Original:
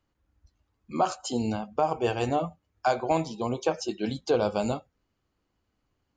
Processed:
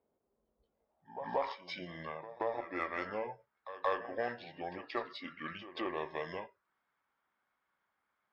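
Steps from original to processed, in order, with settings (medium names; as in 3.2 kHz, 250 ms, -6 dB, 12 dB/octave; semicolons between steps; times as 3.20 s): in parallel at +0.5 dB: compression, threshold -34 dBFS, peak gain reduction 14.5 dB; on the sum: pre-echo 132 ms -14 dB; speed mistake 45 rpm record played at 33 rpm; band-pass sweep 470 Hz -> 1.4 kHz, 0.73–1.43 s; Chebyshev shaper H 6 -36 dB, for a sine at -21 dBFS; trim +1 dB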